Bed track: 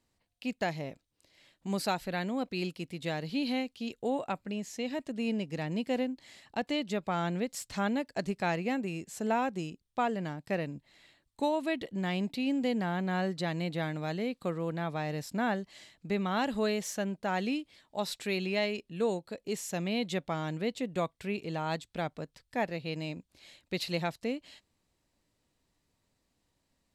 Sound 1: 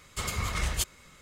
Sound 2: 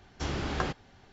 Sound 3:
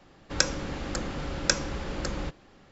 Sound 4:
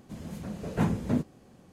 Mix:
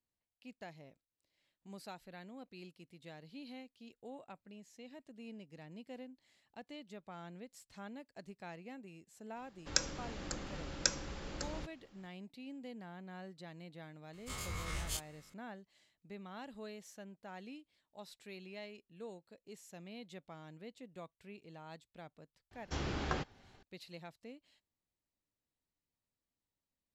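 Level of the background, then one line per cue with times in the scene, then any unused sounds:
bed track −18 dB
0:09.36: mix in 3 −11.5 dB + high-shelf EQ 3,800 Hz +7 dB
0:14.13: mix in 1 −14.5 dB + every bin's largest magnitude spread in time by 60 ms
0:22.51: mix in 2 −5.5 dB
not used: 4

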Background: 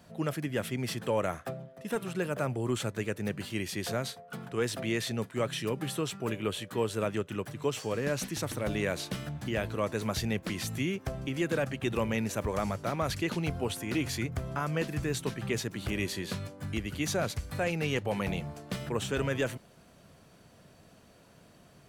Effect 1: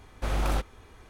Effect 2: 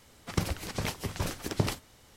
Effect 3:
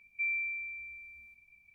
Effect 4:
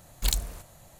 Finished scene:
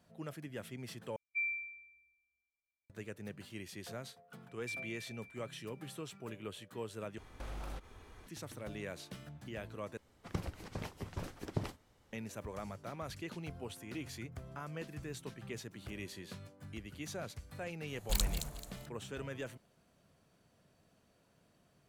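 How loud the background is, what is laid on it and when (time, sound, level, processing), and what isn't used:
background −12.5 dB
0:01.16: overwrite with 3 −2 dB + expander for the loud parts 2.5 to 1, over −52 dBFS
0:04.48: mix in 3 −10 dB + reverb reduction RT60 0.59 s
0:07.18: overwrite with 1 −4 dB + downward compressor 4 to 1, threshold −38 dBFS
0:09.97: overwrite with 2 −8.5 dB + high-shelf EQ 2,400 Hz −9.5 dB
0:17.87: mix in 4 −7 dB + delay that swaps between a low-pass and a high-pass 109 ms, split 1,600 Hz, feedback 57%, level −3 dB

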